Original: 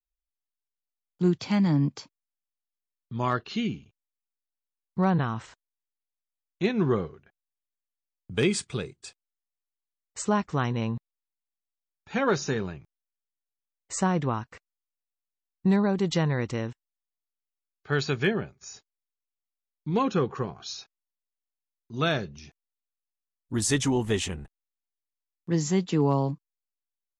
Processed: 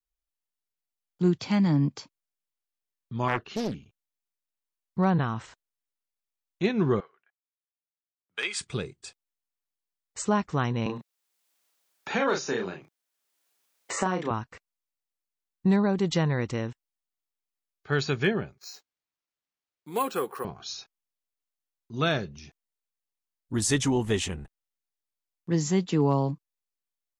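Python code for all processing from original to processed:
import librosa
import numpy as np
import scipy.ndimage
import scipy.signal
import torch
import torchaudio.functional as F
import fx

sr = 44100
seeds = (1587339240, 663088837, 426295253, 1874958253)

y = fx.chain(x, sr, fx.peak_eq(hz=4200.0, db=-8.0, octaves=0.68),
    fx.notch(hz=7400.0, q=16.0),
    fx.doppler_dist(depth_ms=0.81), at=(3.28, 3.75))
y = fx.chain(y, sr, fx.highpass(hz=1300.0, slope=12),
    fx.high_shelf(hz=5300.0, db=-5.5),
    fx.band_widen(depth_pct=40), at=(7.0, 8.61))
y = fx.chain(y, sr, fx.highpass(hz=280.0, slope=12),
    fx.doubler(ms=33.0, db=-4),
    fx.band_squash(depth_pct=70), at=(10.86, 14.31))
y = fx.chain(y, sr, fx.highpass(hz=430.0, slope=12),
    fx.resample_bad(factor=4, down='none', up='hold'), at=(18.58, 20.45))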